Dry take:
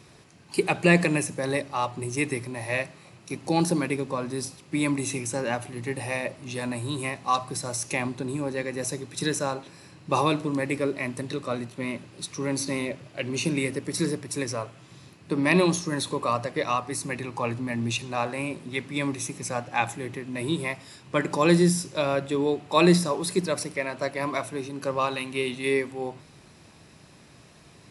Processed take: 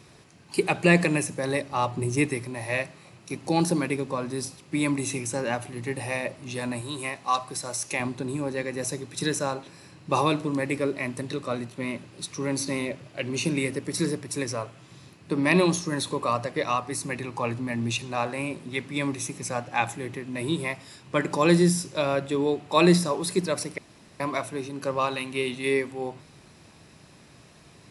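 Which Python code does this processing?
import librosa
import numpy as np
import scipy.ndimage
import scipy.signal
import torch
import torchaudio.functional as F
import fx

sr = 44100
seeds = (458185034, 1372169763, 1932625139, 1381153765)

y = fx.low_shelf(x, sr, hz=480.0, db=6.0, at=(1.71, 2.26))
y = fx.low_shelf(y, sr, hz=280.0, db=-8.5, at=(6.81, 8.0))
y = fx.edit(y, sr, fx.room_tone_fill(start_s=23.78, length_s=0.42), tone=tone)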